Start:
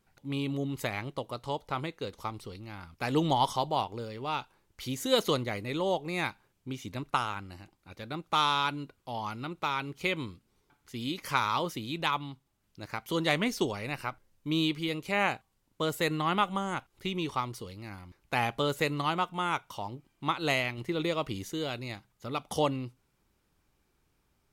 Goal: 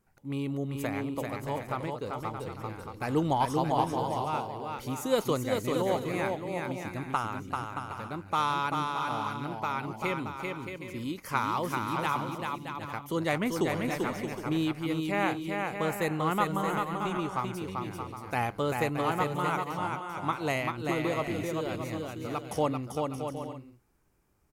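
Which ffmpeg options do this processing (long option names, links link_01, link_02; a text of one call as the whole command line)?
ffmpeg -i in.wav -filter_complex "[0:a]equalizer=frequency=3600:width_type=o:width=1.1:gain=-10,asplit=2[link_01][link_02];[link_02]aecho=0:1:390|624|764.4|848.6|899.2:0.631|0.398|0.251|0.158|0.1[link_03];[link_01][link_03]amix=inputs=2:normalize=0" out.wav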